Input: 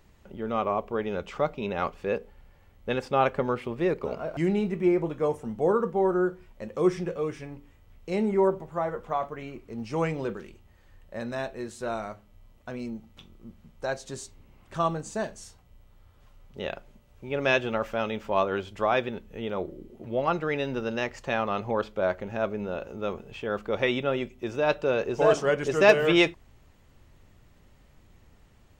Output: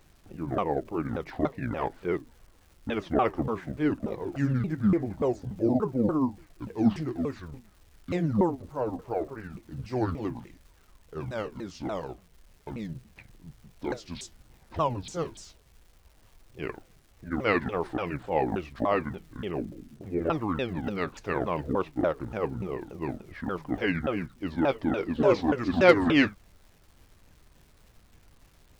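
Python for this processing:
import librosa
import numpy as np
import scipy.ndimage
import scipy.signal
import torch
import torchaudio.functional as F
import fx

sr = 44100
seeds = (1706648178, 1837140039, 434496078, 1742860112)

y = fx.pitch_ramps(x, sr, semitones=-12.0, every_ms=290)
y = fx.dmg_crackle(y, sr, seeds[0], per_s=470.0, level_db=-51.0)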